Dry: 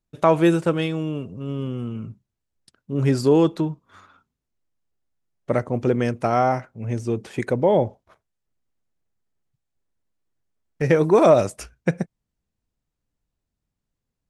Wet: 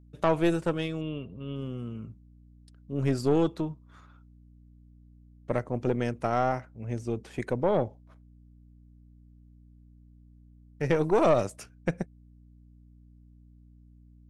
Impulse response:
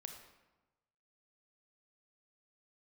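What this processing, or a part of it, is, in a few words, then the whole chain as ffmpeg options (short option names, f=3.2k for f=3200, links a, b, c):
valve amplifier with mains hum: -filter_complex "[0:a]aeval=exprs='(tanh(3.16*val(0)+0.6)-tanh(0.6))/3.16':c=same,aeval=exprs='val(0)+0.00398*(sin(2*PI*60*n/s)+sin(2*PI*2*60*n/s)/2+sin(2*PI*3*60*n/s)/3+sin(2*PI*4*60*n/s)/4+sin(2*PI*5*60*n/s)/5)':c=same,asettb=1/sr,asplit=3[a][b][c];[a]atrim=end=1.014[d];[b]atrim=start=1.01:end=1.56,asetpts=PTS-STARTPTS,afade=t=in:d=0.004:c=qsin,afade=t=out:st=0.546:d=0.004:c=qsin,highshelf=f=4.7k:t=q:w=3:g=-12[e];[c]atrim=start=1.556[f];[d][e]acrossfade=d=0.004:c1=hsin:c2=qsin[g];[g][f]acrossfade=d=0.004:c1=qsin:c2=hsin,volume=-5dB"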